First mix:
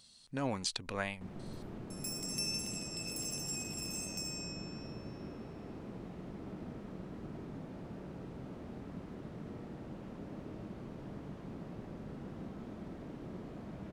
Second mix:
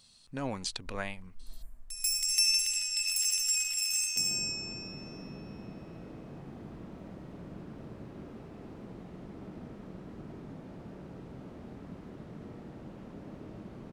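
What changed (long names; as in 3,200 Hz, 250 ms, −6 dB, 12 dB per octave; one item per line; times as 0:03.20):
first sound +11.5 dB
second sound: entry +2.95 s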